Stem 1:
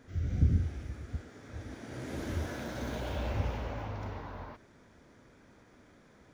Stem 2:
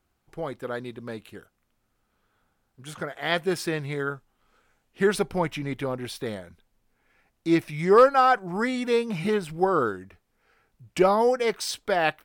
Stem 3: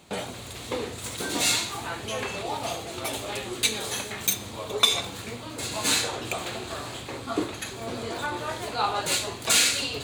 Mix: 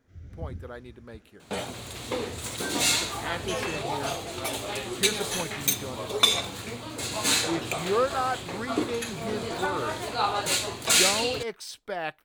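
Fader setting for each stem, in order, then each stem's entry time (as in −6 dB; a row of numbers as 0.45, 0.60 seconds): −11.5, −9.0, 0.0 decibels; 0.00, 0.00, 1.40 seconds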